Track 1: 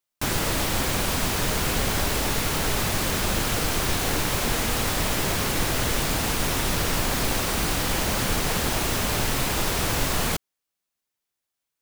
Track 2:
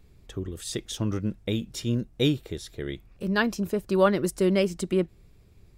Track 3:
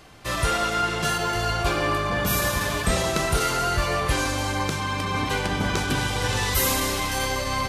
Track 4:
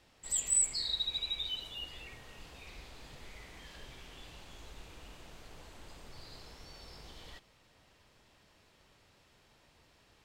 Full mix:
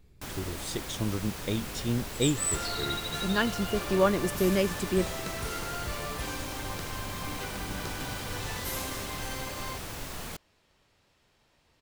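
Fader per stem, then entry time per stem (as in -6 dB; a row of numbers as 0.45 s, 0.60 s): -14.5 dB, -3.0 dB, -13.5 dB, -2.5 dB; 0.00 s, 0.00 s, 2.10 s, 1.90 s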